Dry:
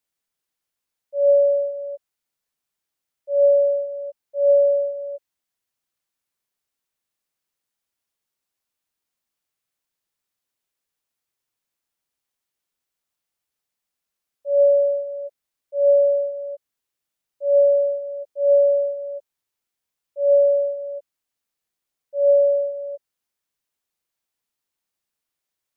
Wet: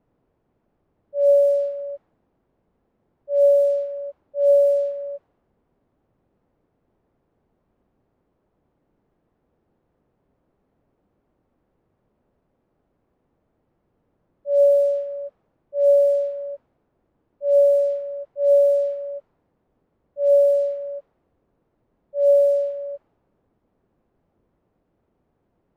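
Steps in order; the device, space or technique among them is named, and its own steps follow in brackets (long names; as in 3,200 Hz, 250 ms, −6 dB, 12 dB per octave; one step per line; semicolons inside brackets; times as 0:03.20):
cassette deck with a dynamic noise filter (white noise bed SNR 30 dB; low-pass that shuts in the quiet parts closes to 450 Hz, open at −13.5 dBFS)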